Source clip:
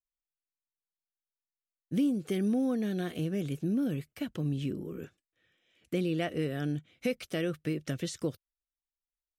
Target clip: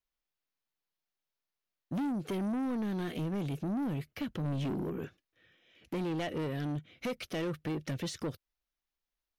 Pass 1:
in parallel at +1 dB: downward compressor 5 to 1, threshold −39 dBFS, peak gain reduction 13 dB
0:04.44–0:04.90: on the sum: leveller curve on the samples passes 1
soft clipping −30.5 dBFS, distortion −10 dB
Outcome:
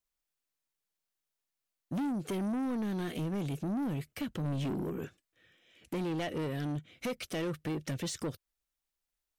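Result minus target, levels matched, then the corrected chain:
8,000 Hz band +4.5 dB
in parallel at +1 dB: downward compressor 5 to 1, threshold −39 dBFS, peak gain reduction 13 dB + low-pass filter 8,400 Hz 24 dB per octave
0:04.44–0:04.90: on the sum: leveller curve on the samples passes 1
soft clipping −30.5 dBFS, distortion −10 dB

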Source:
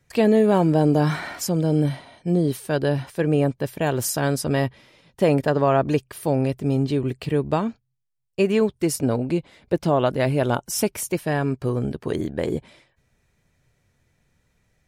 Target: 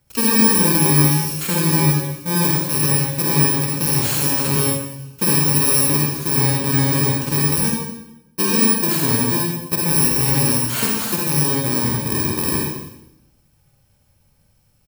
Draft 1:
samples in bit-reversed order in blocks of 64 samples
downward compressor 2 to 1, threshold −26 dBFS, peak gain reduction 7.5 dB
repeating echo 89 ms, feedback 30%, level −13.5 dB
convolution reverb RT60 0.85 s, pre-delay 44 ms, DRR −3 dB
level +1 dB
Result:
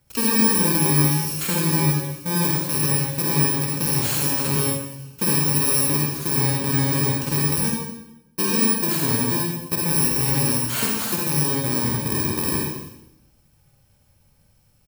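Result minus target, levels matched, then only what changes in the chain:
downward compressor: peak gain reduction +4 dB
change: downward compressor 2 to 1, threshold −18.5 dBFS, peak gain reduction 3.5 dB

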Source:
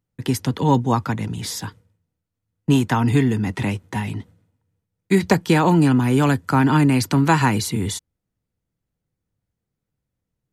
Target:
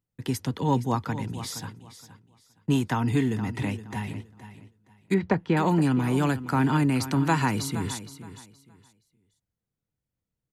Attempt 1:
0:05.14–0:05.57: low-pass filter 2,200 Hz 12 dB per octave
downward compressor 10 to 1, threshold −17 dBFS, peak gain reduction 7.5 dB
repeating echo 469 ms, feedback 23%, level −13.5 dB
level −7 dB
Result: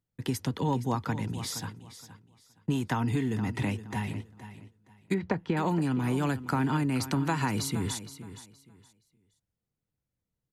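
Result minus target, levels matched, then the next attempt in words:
downward compressor: peak gain reduction +7.5 dB
0:05.14–0:05.57: low-pass filter 2,200 Hz 12 dB per octave
repeating echo 469 ms, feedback 23%, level −13.5 dB
level −7 dB

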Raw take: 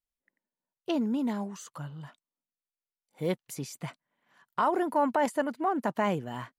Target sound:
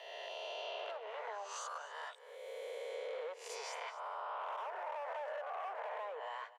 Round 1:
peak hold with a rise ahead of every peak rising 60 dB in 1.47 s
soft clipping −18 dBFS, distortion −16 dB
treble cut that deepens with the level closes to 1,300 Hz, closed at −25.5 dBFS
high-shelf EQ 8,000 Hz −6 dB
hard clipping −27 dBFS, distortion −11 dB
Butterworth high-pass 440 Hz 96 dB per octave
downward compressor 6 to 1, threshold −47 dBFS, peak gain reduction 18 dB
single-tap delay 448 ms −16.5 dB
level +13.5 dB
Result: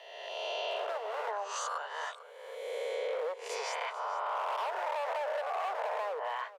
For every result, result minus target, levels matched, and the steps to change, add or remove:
echo 199 ms late; downward compressor: peak gain reduction −7.5 dB; soft clipping: distortion −7 dB
change: single-tap delay 249 ms −16.5 dB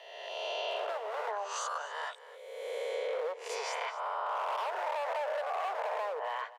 downward compressor: peak gain reduction −7.5 dB; soft clipping: distortion −7 dB
change: downward compressor 6 to 1, threshold −56.5 dBFS, peak gain reduction 26 dB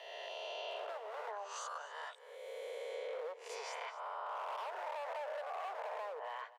soft clipping: distortion −7 dB
change: soft clipping −26 dBFS, distortion −9 dB

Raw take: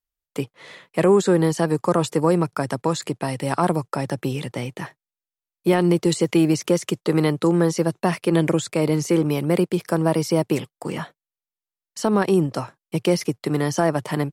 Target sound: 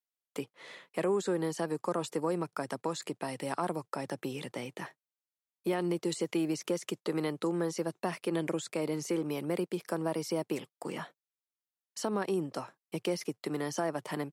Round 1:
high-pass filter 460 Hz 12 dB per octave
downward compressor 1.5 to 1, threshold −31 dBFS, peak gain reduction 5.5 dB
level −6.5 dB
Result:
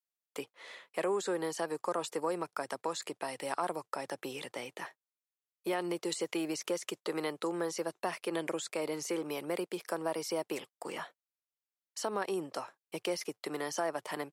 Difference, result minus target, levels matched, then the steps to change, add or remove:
250 Hz band −3.0 dB
change: high-pass filter 210 Hz 12 dB per octave

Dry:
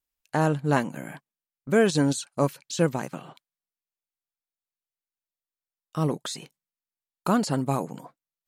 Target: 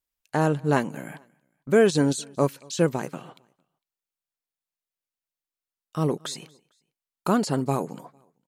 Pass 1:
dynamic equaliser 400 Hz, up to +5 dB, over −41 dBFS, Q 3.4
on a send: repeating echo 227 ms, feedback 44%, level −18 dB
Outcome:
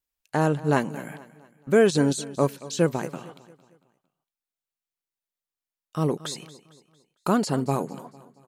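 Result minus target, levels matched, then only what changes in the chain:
echo-to-direct +9 dB
change: repeating echo 227 ms, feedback 44%, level −27 dB

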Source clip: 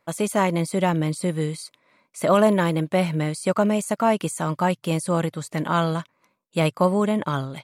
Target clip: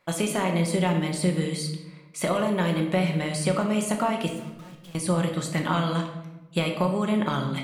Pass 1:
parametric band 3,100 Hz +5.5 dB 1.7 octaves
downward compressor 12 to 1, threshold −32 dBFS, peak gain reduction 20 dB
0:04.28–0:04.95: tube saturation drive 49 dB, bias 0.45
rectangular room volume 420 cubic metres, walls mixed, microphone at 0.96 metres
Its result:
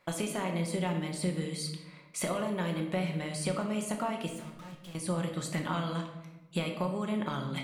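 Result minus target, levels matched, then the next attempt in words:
downward compressor: peak gain reduction +8.5 dB
parametric band 3,100 Hz +5.5 dB 1.7 octaves
downward compressor 12 to 1, threshold −23 dBFS, peak gain reduction 12 dB
0:04.28–0:04.95: tube saturation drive 49 dB, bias 0.45
rectangular room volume 420 cubic metres, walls mixed, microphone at 0.96 metres

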